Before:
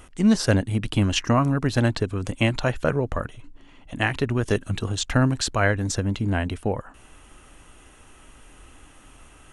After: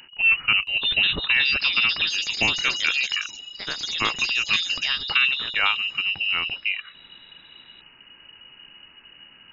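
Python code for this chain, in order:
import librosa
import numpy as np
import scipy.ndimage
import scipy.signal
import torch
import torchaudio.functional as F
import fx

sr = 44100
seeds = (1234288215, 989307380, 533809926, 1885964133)

y = fx.freq_invert(x, sr, carrier_hz=2900)
y = fx.echo_pitch(y, sr, ms=673, semitones=5, count=3, db_per_echo=-6.0)
y = y * 10.0 ** (-1.5 / 20.0)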